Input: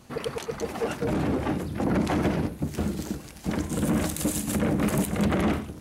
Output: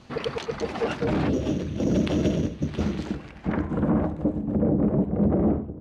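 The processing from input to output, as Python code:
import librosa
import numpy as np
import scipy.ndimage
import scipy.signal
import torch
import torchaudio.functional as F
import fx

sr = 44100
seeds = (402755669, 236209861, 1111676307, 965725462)

y = fx.spec_box(x, sr, start_s=1.29, length_s=1.51, low_hz=670.0, high_hz=2600.0, gain_db=-13)
y = fx.sample_hold(y, sr, seeds[0], rate_hz=6200.0, jitter_pct=0, at=(1.33, 2.98))
y = fx.filter_sweep_lowpass(y, sr, from_hz=4300.0, to_hz=550.0, start_s=2.84, end_s=4.39, q=1.1)
y = y * 10.0 ** (2.0 / 20.0)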